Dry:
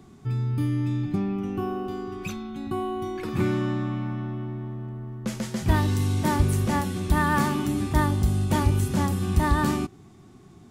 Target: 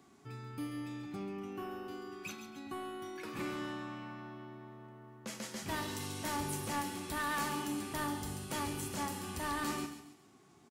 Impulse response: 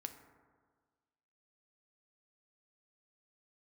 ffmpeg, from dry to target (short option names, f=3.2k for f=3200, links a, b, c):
-filter_complex "[0:a]highpass=f=580:p=1,bandreject=f=3.6k:w=28,acrossover=split=2300[a][b];[a]asoftclip=type=tanh:threshold=-28.5dB[c];[b]aecho=1:1:137|274|411|548:0.398|0.147|0.0545|0.0202[d];[c][d]amix=inputs=2:normalize=0[e];[1:a]atrim=start_sample=2205,afade=t=out:st=0.36:d=0.01,atrim=end_sample=16317[f];[e][f]afir=irnorm=-1:irlink=0,volume=-1.5dB"